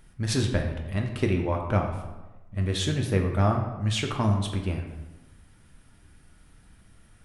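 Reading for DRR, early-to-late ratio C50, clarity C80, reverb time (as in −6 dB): 2.0 dB, 6.0 dB, 8.0 dB, 1.1 s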